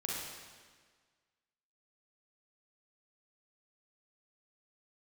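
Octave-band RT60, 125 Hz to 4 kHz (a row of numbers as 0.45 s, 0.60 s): 1.6 s, 1.6 s, 1.6 s, 1.6 s, 1.5 s, 1.4 s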